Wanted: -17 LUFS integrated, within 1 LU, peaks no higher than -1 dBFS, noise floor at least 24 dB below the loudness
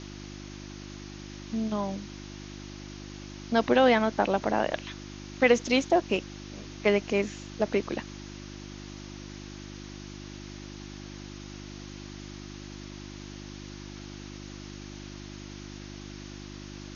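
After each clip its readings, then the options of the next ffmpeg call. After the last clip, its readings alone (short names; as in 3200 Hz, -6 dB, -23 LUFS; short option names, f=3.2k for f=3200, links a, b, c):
hum 50 Hz; harmonics up to 350 Hz; hum level -40 dBFS; noise floor -42 dBFS; noise floor target -51 dBFS; loudness -27.0 LUFS; peak -7.5 dBFS; loudness target -17.0 LUFS
-> -af "bandreject=f=50:t=h:w=4,bandreject=f=100:t=h:w=4,bandreject=f=150:t=h:w=4,bandreject=f=200:t=h:w=4,bandreject=f=250:t=h:w=4,bandreject=f=300:t=h:w=4,bandreject=f=350:t=h:w=4"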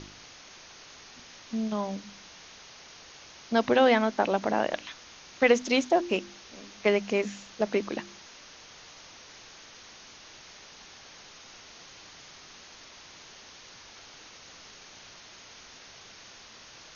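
hum none; noise floor -50 dBFS; noise floor target -51 dBFS
-> -af "afftdn=nr=6:nf=-50"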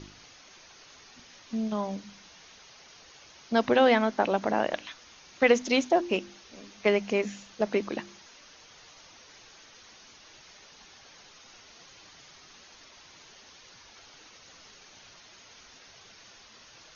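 noise floor -54 dBFS; loudness -27.0 LUFS; peak -7.5 dBFS; loudness target -17.0 LUFS
-> -af "volume=10dB,alimiter=limit=-1dB:level=0:latency=1"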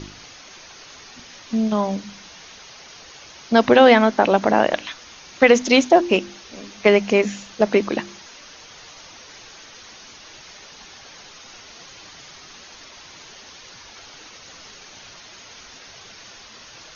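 loudness -17.5 LUFS; peak -1.0 dBFS; noise floor -44 dBFS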